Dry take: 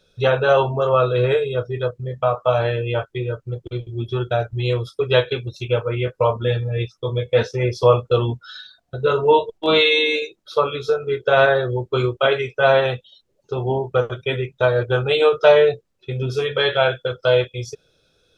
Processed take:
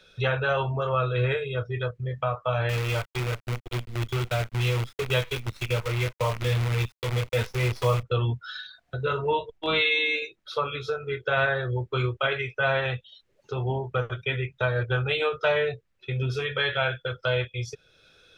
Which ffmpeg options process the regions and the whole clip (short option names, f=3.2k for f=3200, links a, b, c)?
-filter_complex "[0:a]asettb=1/sr,asplit=3[a][b][c];[a]atrim=end=2.694[d];[b]atrim=start=2.69:end=8.03,asetpts=PTS-STARTPTS,afade=t=in:d=0.004:c=qsin,afade=t=out:st=5.336:d=0.004:c=qsin,acrusher=bits=5:dc=4:mix=0:aa=0.000001,equalizer=f=1.7k:t=o:w=0.26:g=-7[e];[c]atrim=start=8.026[f];[d][e]acrossfade=d=0.004:c1=hsin:c2=qsin[g];[g][f]acrossfade=d=0.004:c1=qsin:c2=hsin,equalizer=f=2k:t=o:w=1.8:g=11.5,acrossover=split=140[h][i];[i]acompressor=threshold=-48dB:ratio=1.5[j];[h][j]amix=inputs=2:normalize=0"